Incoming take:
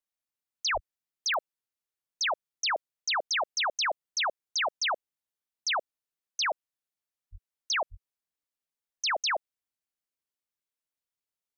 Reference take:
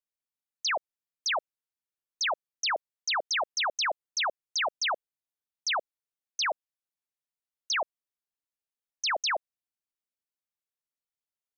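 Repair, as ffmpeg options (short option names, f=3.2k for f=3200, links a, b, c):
-filter_complex "[0:a]adeclick=t=4,asplit=3[a][b][c];[a]afade=t=out:st=0.73:d=0.02[d];[b]highpass=f=140:w=0.5412,highpass=f=140:w=1.3066,afade=t=in:st=0.73:d=0.02,afade=t=out:st=0.85:d=0.02[e];[c]afade=t=in:st=0.85:d=0.02[f];[d][e][f]amix=inputs=3:normalize=0,asplit=3[g][h][i];[g]afade=t=out:st=7.31:d=0.02[j];[h]highpass=f=140:w=0.5412,highpass=f=140:w=1.3066,afade=t=in:st=7.31:d=0.02,afade=t=out:st=7.43:d=0.02[k];[i]afade=t=in:st=7.43:d=0.02[l];[j][k][l]amix=inputs=3:normalize=0,asplit=3[m][n][o];[m]afade=t=out:st=7.9:d=0.02[p];[n]highpass=f=140:w=0.5412,highpass=f=140:w=1.3066,afade=t=in:st=7.9:d=0.02,afade=t=out:st=8.02:d=0.02[q];[o]afade=t=in:st=8.02:d=0.02[r];[p][q][r]amix=inputs=3:normalize=0"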